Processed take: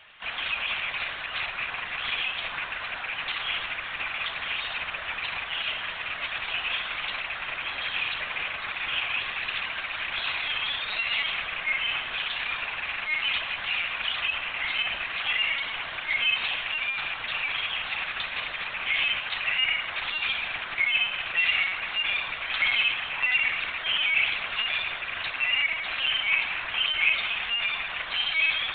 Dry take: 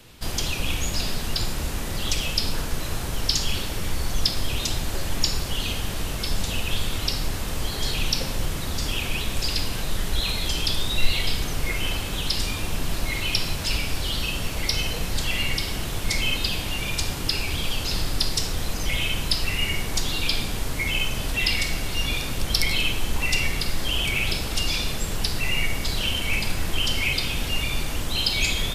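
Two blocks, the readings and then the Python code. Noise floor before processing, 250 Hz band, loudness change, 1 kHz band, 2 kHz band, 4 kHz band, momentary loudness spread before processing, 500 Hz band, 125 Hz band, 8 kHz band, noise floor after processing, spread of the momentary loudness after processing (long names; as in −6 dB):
−29 dBFS, −20.0 dB, −1.0 dB, +0.5 dB, +4.5 dB, −2.5 dB, 6 LU, −9.5 dB, −24.0 dB, below −40 dB, −36 dBFS, 8 LU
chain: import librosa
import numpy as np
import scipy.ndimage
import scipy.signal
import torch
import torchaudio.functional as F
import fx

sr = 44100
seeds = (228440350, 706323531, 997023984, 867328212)

y = fx.rattle_buzz(x, sr, strikes_db=-26.0, level_db=-17.0)
y = fx.highpass(y, sr, hz=1300.0, slope=6)
y = np.repeat(y[::3], 3)[:len(y)]
y = fx.bandpass_q(y, sr, hz=1800.0, q=0.84)
y = fx.air_absorb(y, sr, metres=200.0)
y = fx.lpc_vocoder(y, sr, seeds[0], excitation='pitch_kept', order=16)
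y = F.gain(torch.from_numpy(y), 8.0).numpy()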